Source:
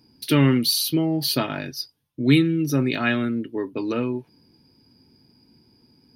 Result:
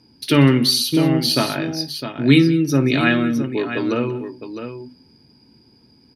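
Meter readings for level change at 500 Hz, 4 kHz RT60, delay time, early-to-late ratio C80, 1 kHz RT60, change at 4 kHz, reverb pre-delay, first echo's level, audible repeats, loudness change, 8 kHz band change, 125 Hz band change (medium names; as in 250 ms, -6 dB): +5.0 dB, no reverb, 55 ms, no reverb, no reverb, +5.0 dB, no reverb, -16.0 dB, 3, +4.5 dB, +3.0 dB, +4.5 dB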